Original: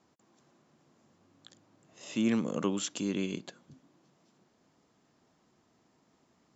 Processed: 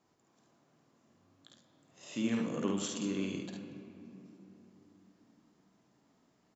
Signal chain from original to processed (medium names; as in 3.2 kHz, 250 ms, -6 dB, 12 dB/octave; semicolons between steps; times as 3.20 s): early reflections 51 ms -4.5 dB, 73 ms -6 dB; on a send at -7 dB: reverberation RT60 3.3 s, pre-delay 7 ms; on the sum: trim -5.5 dB